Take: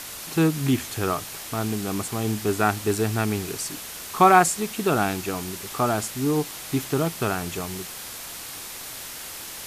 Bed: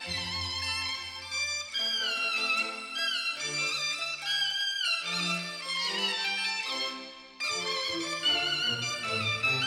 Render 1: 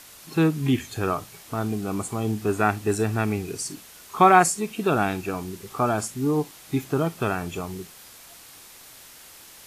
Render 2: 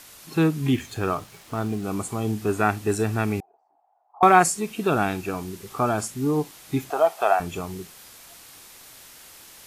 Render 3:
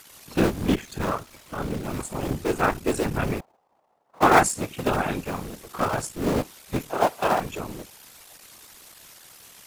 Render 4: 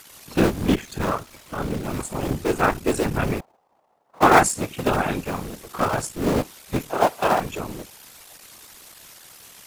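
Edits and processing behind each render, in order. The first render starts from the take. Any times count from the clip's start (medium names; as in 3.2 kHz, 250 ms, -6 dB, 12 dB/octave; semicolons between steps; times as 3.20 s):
noise print and reduce 10 dB
0.75–1.84 s: hysteresis with a dead band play -44.5 dBFS; 3.40–4.23 s: Butterworth band-pass 770 Hz, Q 4.8; 6.90–7.40 s: resonant high-pass 700 Hz, resonance Q 5.5
cycle switcher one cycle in 3, muted; whisper effect
trim +2.5 dB; peak limiter -1 dBFS, peak gain reduction 1 dB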